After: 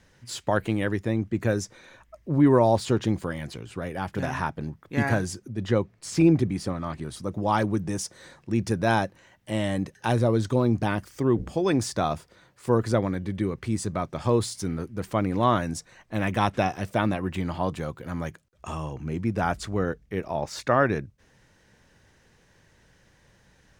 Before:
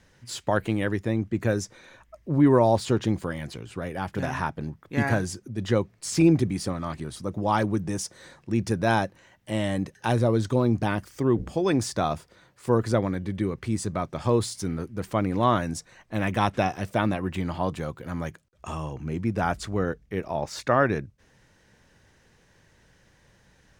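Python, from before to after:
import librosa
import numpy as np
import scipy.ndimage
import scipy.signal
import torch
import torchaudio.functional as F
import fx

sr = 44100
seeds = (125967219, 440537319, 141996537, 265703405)

y = fx.high_shelf(x, sr, hz=4400.0, db=-6.5, at=(5.52, 7.03))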